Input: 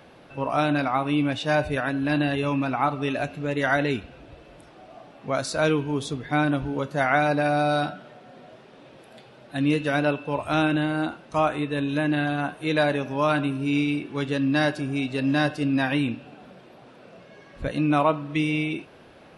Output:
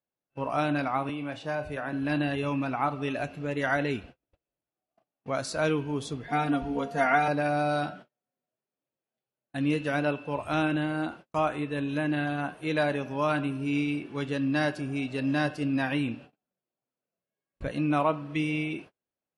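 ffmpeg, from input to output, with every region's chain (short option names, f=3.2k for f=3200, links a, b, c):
-filter_complex "[0:a]asettb=1/sr,asplit=3[a][b][c];[a]atrim=end=1.094[d];[b]atrim=start=1.09:end=1.93,asetpts=PTS-STARTPTS,afade=t=in:d=0.004:c=qsin,afade=t=out:st=0.836:d=0.004:c=qsin,asplit=2[e][f];[f]adelay=35,volume=-12.5dB[g];[e][g]amix=inputs=2:normalize=0,atrim=end_sample=37044,acrossover=split=510|1500[h][i][j];[h]acompressor=threshold=-32dB:ratio=4[k];[i]acompressor=threshold=-27dB:ratio=4[l];[j]acompressor=threshold=-40dB:ratio=4[m];[k][l][m]amix=inputs=3:normalize=0[n];[c]atrim=start=1.926[o];[d][n]acrossfade=d=0.004:c1=hsin:c2=qsin[p];[p][o]acrossfade=d=0.004:c1=qsin:c2=hsin,asettb=1/sr,asplit=3[q][r][s];[q]atrim=end=6.284[t];[r]atrim=start=6.28:end=7.28,asetpts=PTS-STARTPTS,afade=t=in:d=0.004:c=qsin,afade=t=out:st=0.996:d=0.004:c=qsin,bandreject=f=60:t=h:w=6,bandreject=f=120:t=h:w=6,bandreject=f=180:t=h:w=6,bandreject=f=240:t=h:w=6,bandreject=f=300:t=h:w=6,bandreject=f=360:t=h:w=6,bandreject=f=420:t=h:w=6,bandreject=f=480:t=h:w=6,aecho=1:1:4.3:0.85,atrim=end_sample=44100,aeval=exprs='val(0)+0.0178*sin(2*PI*700*n/s)':c=same[u];[s]atrim=start=7.276[v];[t][u]acrossfade=d=0.004:c1=hsin:c2=qsin[w];[w][v]acrossfade=d=0.004:c1=qsin:c2=hsin,bandreject=f=3.7k:w=16,agate=range=-40dB:threshold=-40dB:ratio=16:detection=peak,volume=-4.5dB"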